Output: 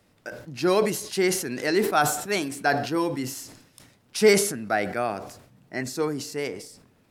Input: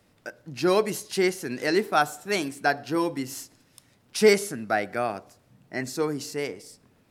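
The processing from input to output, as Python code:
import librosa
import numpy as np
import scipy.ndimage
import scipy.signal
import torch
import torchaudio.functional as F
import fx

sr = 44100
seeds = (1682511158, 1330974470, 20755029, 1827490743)

y = fx.sustainer(x, sr, db_per_s=74.0)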